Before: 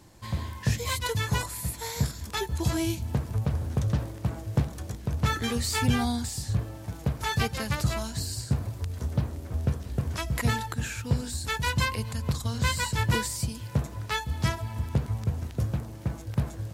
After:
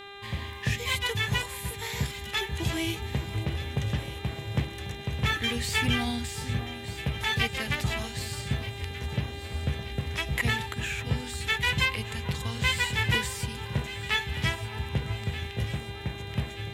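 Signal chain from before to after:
flat-topped bell 2,500 Hz +10 dB 1.2 octaves
in parallel at −4 dB: dead-zone distortion −45 dBFS
on the sum: hum with harmonics 400 Hz, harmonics 10, −37 dBFS −2 dB per octave
delay that swaps between a low-pass and a high-pass 615 ms, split 1,400 Hz, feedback 71%, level −11 dB
level −7.5 dB

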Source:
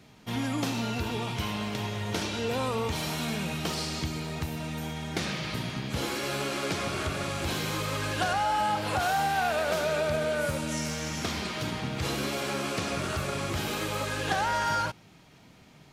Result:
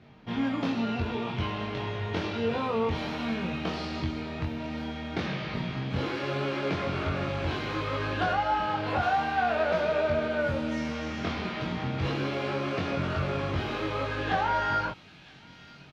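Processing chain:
high-frequency loss of the air 270 metres
double-tracking delay 22 ms −2 dB
delay with a high-pass on its return 966 ms, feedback 67%, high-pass 3,000 Hz, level −13 dB

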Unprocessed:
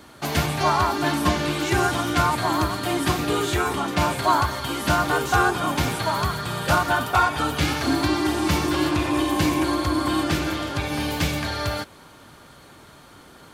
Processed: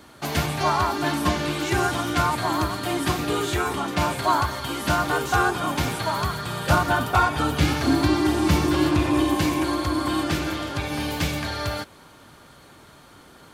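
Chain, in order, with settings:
0:06.70–0:09.35: low-shelf EQ 430 Hz +5.5 dB
level −1.5 dB

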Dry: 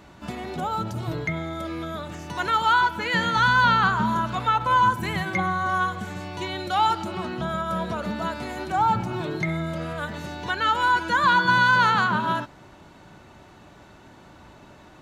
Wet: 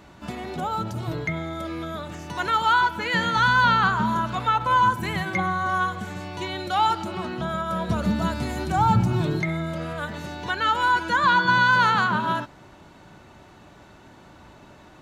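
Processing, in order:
0:07.89–0:09.40: bass and treble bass +11 dB, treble +6 dB
0:11.16–0:11.71: low-pass filter 7,900 Hz 12 dB per octave

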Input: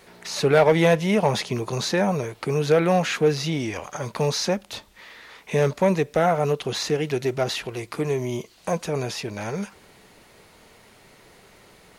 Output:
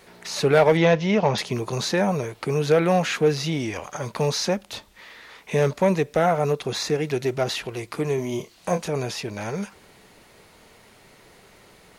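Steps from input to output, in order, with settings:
0:00.77–0:01.38: Butterworth low-pass 6,100 Hz 36 dB per octave
0:06.42–0:07.11: notch filter 3,000 Hz, Q 7.6
0:08.15–0:08.88: double-tracking delay 28 ms −7.5 dB

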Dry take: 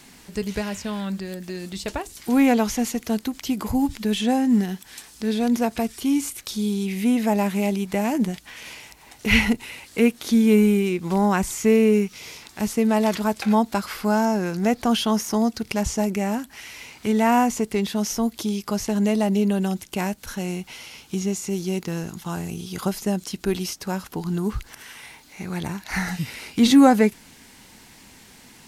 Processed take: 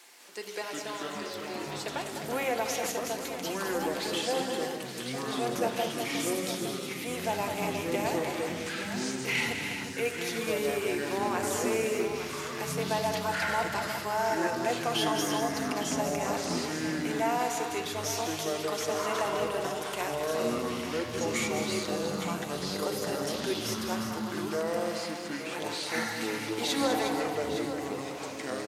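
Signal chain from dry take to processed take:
high-pass filter 400 Hz 24 dB per octave
brickwall limiter −15.5 dBFS, peak gain reduction 9.5 dB
on a send at −5 dB: convolution reverb RT60 0.85 s, pre-delay 6 ms
on the sum: delay with pitch and tempo change per echo 203 ms, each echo −6 semitones, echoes 3
multi-tap delay 203/359/860 ms −8/−9/−11.5 dB
level −6 dB

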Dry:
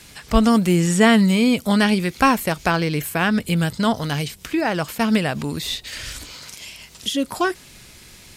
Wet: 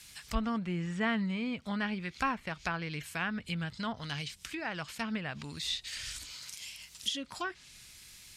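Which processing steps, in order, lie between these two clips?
treble cut that deepens with the level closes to 1,800 Hz, closed at −15 dBFS
guitar amp tone stack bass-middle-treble 5-5-5

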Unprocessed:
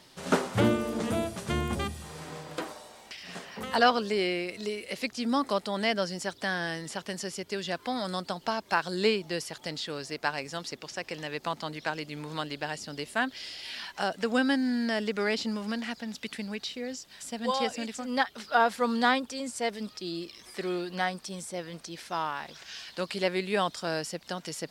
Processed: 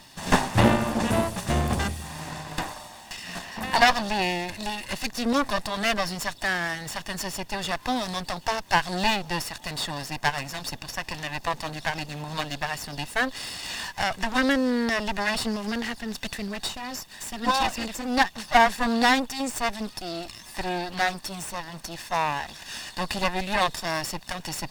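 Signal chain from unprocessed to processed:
lower of the sound and its delayed copy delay 1.1 ms
level +7.5 dB

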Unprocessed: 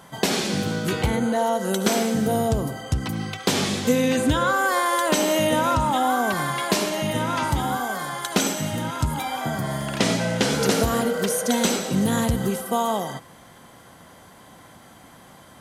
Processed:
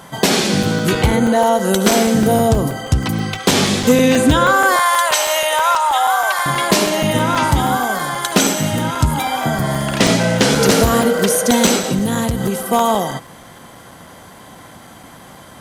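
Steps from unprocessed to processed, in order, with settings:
0:04.76–0:06.46: high-pass filter 700 Hz 24 dB per octave
0:11.78–0:12.73: downward compressor 5 to 1, threshold −23 dBFS, peak gain reduction 7 dB
hard clipping −13 dBFS, distortion −22 dB
regular buffer underruns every 0.16 s, samples 128, zero, from 0:00.63
level +8.5 dB

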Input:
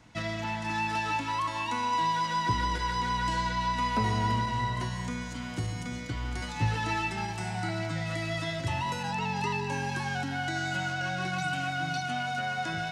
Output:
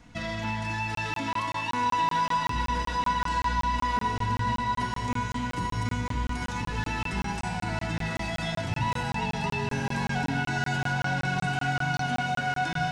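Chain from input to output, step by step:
low-shelf EQ 110 Hz +9 dB
brickwall limiter −22.5 dBFS, peak gain reduction 9.5 dB
on a send: feedback delay with all-pass diffusion 953 ms, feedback 61%, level −7 dB
on the sum: rectangular room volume 2,700 cubic metres, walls furnished, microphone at 1.8 metres
regular buffer underruns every 0.19 s, samples 1,024, zero, from 0:00.95

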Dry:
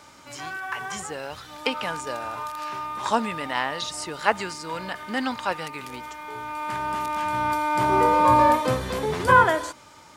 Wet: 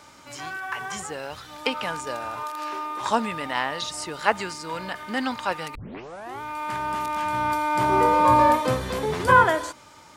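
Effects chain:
0:02.43–0:03.01: low shelf with overshoot 230 Hz −12.5 dB, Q 3
0:05.75: tape start 0.66 s

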